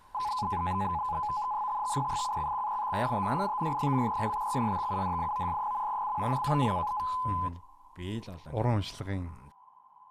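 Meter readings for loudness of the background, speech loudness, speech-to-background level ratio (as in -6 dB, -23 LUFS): -32.5 LUFS, -35.0 LUFS, -2.5 dB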